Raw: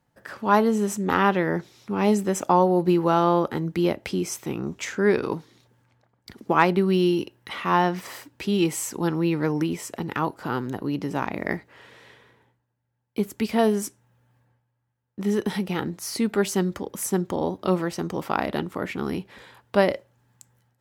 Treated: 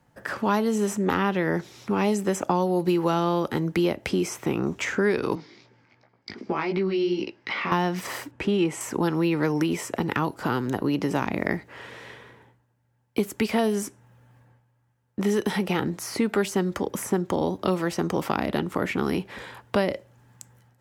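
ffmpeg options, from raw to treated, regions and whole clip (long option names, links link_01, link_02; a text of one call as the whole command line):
ffmpeg -i in.wav -filter_complex "[0:a]asettb=1/sr,asplit=3[link_01][link_02][link_03];[link_01]atrim=end=5.354[link_04];[link_02]atrim=start=5.35:end=7.72,asetpts=PTS-STARTPTS,afade=type=in:duration=0.004:curve=qsin,afade=type=out:start_time=2.366:duration=0.004:curve=qsin,highpass=110,equalizer=frequency=130:width_type=q:width=4:gain=-6,equalizer=frequency=360:width_type=q:width=4:gain=3,equalizer=frequency=2200:width_type=q:width=4:gain=9,equalizer=frequency=4900:width_type=q:width=4:gain=10,lowpass=frequency=5800:width=0.5412,lowpass=frequency=5800:width=1.3066,acompressor=threshold=-28dB:ratio=3:attack=3.2:release=140:knee=1:detection=peak,flanger=delay=15.5:depth=4.4:speed=2.7[link_05];[link_03]atrim=start=7.716[link_06];[link_04][link_05]acrossfade=duration=0.004:curve1=hsin:curve2=qsin[link_07];[link_07][link_06]acrossfade=duration=0.004:curve1=qsin:curve2=hsin,asettb=1/sr,asplit=3[link_08][link_09][link_10];[link_08]atrim=end=8.314[link_11];[link_09]atrim=start=8.31:end=8.81,asetpts=PTS-STARTPTS,afade=type=in:duration=0.004:curve=qsin,afade=type=out:start_time=0.496:duration=0.004:curve=qsin,lowpass=6100,equalizer=frequency=4600:width_type=o:width=1.3:gain=-10[link_12];[link_10]atrim=start=8.806[link_13];[link_11][link_12]acrossfade=duration=0.004:curve1=hsin:curve2=qsin[link_14];[link_14][link_13]acrossfade=duration=0.004:curve1=qsin:curve2=hsin,highshelf=frequency=11000:gain=-5.5,acrossover=split=360|2600[link_15][link_16][link_17];[link_15]acompressor=threshold=-35dB:ratio=4[link_18];[link_16]acompressor=threshold=-34dB:ratio=4[link_19];[link_17]acompressor=threshold=-43dB:ratio=4[link_20];[link_18][link_19][link_20]amix=inputs=3:normalize=0,equalizer=frequency=4000:width=1.7:gain=-3,volume=8dB" out.wav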